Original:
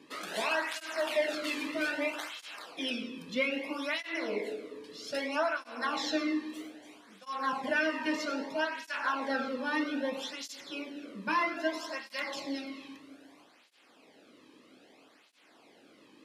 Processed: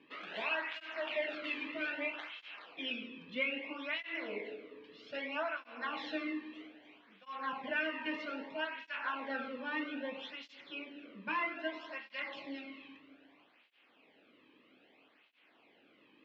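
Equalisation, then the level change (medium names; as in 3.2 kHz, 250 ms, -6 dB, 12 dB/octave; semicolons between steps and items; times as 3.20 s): four-pole ladder low-pass 3.3 kHz, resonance 45%; +1.0 dB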